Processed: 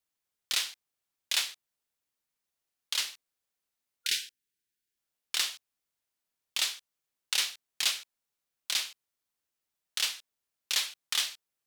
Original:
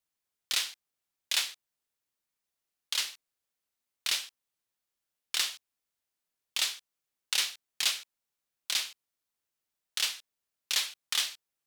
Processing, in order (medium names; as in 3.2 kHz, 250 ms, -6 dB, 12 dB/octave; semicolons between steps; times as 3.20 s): spectral selection erased 4.04–4.98 s, 490–1400 Hz